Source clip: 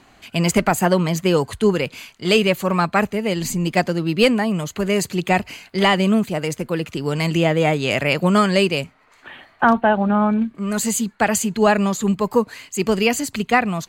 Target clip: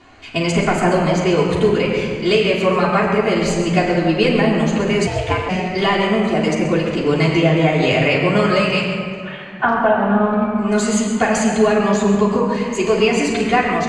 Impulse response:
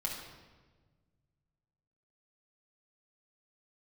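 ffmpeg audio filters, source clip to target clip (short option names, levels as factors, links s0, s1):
-filter_complex "[0:a]asettb=1/sr,asplit=3[s0][s1][s2];[s0]atrim=end=8.604[s3];[s1]atrim=start=8.6:end=9.64,asetpts=PTS-STARTPTS,afade=t=in:d=0.004:c=qsin,afade=t=out:st=1.036:d=0.004:c=qsin,highpass=f=730:w=0.5412,highpass=f=730:w=1.3066[s4];[s2]atrim=start=9.636[s5];[s3][s4]acrossfade=d=0.004:c1=hsin:c2=qsin[s6];[s6][s5]acrossfade=d=0.004:c1=qsin:c2=hsin,acompressor=threshold=0.141:ratio=6,lowpass=5700[s7];[1:a]atrim=start_sample=2205,asetrate=22050,aresample=44100[s8];[s7][s8]afir=irnorm=-1:irlink=0,asplit=3[s9][s10][s11];[s9]afade=t=out:st=5.06:d=0.02[s12];[s10]aeval=exprs='val(0)*sin(2*PI*280*n/s)':c=same,afade=t=in:st=5.06:d=0.02,afade=t=out:st=5.48:d=0.02[s13];[s11]afade=t=in:st=5.48:d=0.02[s14];[s12][s13][s14]amix=inputs=3:normalize=0,volume=0.891"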